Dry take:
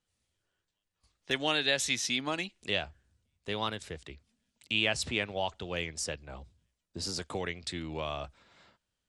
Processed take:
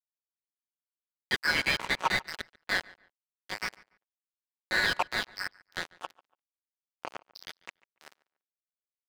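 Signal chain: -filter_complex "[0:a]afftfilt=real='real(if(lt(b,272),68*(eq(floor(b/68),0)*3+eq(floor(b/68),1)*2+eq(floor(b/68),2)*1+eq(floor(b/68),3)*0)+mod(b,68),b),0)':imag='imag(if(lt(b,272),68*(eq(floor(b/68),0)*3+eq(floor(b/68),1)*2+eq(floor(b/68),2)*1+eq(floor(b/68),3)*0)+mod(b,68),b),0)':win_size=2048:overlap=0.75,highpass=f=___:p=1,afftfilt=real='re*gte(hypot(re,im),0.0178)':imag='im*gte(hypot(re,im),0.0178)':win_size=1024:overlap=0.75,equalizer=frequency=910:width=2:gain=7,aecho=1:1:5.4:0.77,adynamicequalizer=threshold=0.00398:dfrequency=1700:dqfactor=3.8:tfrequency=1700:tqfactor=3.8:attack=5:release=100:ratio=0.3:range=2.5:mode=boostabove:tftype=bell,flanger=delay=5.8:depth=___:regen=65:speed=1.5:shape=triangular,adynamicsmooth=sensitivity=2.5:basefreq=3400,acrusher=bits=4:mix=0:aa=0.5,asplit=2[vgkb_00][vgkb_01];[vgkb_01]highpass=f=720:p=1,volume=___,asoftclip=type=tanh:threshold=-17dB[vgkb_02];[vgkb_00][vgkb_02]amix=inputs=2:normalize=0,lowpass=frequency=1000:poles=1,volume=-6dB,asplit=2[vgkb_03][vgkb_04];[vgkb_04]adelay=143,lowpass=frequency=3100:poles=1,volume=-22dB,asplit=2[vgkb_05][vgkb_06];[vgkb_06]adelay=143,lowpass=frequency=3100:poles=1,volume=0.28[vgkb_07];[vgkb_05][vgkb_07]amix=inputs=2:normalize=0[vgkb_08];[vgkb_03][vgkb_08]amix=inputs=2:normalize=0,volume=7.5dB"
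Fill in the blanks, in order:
680, 4.8, 19dB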